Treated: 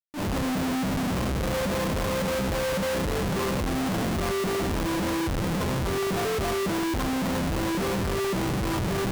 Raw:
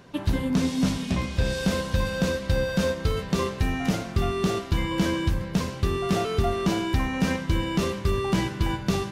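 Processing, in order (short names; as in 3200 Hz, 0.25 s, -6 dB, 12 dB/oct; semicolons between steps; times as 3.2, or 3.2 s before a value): brick-wall FIR low-pass 1300 Hz; low shelf 74 Hz -5 dB; Schmitt trigger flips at -39.5 dBFS; transient shaper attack -11 dB, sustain +12 dB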